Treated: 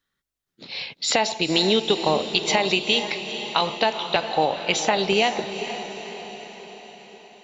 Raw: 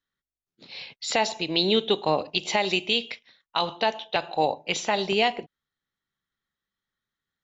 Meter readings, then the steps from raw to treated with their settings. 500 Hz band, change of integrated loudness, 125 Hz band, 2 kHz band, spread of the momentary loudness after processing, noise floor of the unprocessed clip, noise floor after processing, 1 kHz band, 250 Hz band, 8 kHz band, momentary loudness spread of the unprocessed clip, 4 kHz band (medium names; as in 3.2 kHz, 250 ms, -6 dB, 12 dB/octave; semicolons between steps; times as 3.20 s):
+3.5 dB, +3.0 dB, +4.0 dB, +4.0 dB, 15 LU, under -85 dBFS, -80 dBFS, +3.0 dB, +4.0 dB, no reading, 17 LU, +4.0 dB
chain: compression 2.5:1, threshold -26 dBFS, peak gain reduction 6.5 dB; on a send: echo that smears into a reverb 466 ms, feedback 57%, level -10 dB; on the sum: trim +7.5 dB